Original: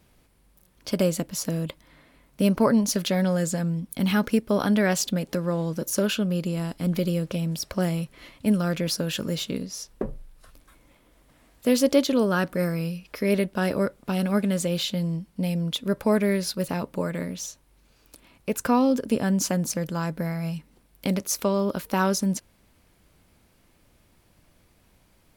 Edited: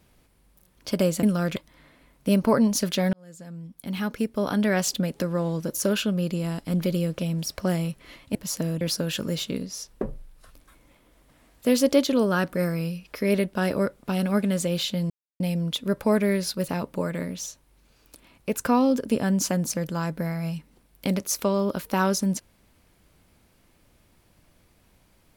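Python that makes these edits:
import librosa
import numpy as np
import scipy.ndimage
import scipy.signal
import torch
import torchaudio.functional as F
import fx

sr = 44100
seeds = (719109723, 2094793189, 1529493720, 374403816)

y = fx.edit(x, sr, fx.swap(start_s=1.23, length_s=0.46, other_s=8.48, other_length_s=0.33),
    fx.fade_in_span(start_s=3.26, length_s=1.8),
    fx.silence(start_s=15.1, length_s=0.3), tone=tone)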